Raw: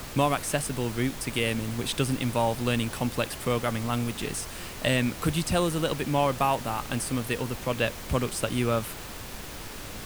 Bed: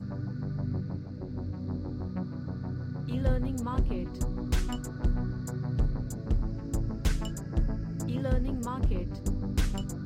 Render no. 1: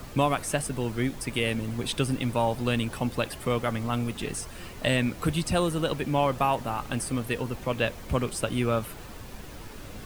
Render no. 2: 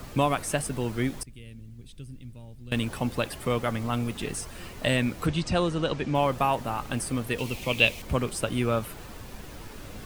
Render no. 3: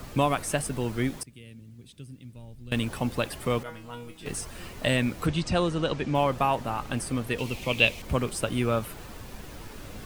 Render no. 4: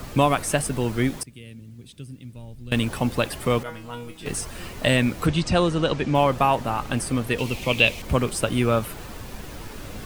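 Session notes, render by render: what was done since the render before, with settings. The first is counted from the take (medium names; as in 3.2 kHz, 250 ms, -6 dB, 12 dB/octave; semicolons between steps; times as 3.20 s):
noise reduction 8 dB, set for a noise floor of -40 dBFS
1.23–2.72 s: amplifier tone stack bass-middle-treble 10-0-1; 5.26–6.15 s: low-pass 7 kHz 24 dB/octave; 7.38–8.02 s: resonant high shelf 2 kHz +6.5 dB, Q 3
1.16–2.35 s: high-pass 110 Hz; 3.63–4.26 s: feedback comb 160 Hz, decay 0.3 s, mix 90%; 6.23–8.04 s: treble shelf 9 kHz -5 dB
trim +5 dB; peak limiter -3 dBFS, peak gain reduction 2.5 dB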